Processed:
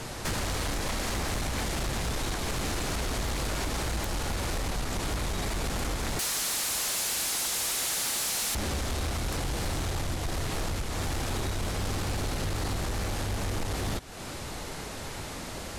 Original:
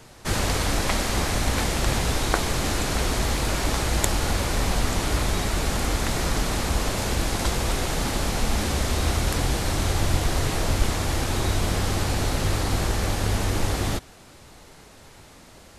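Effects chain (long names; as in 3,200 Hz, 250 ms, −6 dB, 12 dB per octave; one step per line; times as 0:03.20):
0:06.19–0:08.55: spectral tilt +4.5 dB per octave
downward compressor 5 to 1, threshold −37 dBFS, peak gain reduction 21 dB
sine wavefolder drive 14 dB, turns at −18.5 dBFS
level −7.5 dB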